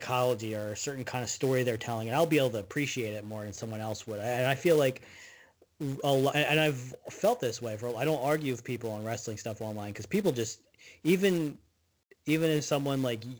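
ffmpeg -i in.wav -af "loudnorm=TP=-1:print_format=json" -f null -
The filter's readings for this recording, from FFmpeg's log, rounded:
"input_i" : "-30.4",
"input_tp" : "-11.1",
"input_lra" : "3.2",
"input_thresh" : "-41.0",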